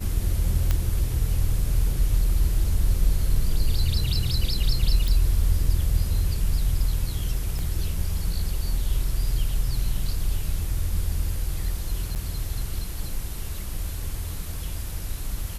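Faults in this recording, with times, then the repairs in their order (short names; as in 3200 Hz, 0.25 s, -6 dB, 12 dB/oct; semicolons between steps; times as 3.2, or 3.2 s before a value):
0.71 pop -10 dBFS
5.08 pop
7.59 pop -20 dBFS
12.15–12.16 gap 8.3 ms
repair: de-click; interpolate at 12.15, 8.3 ms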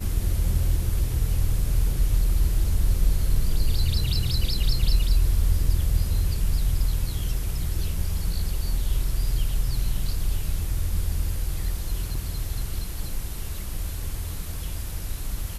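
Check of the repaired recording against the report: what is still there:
7.59 pop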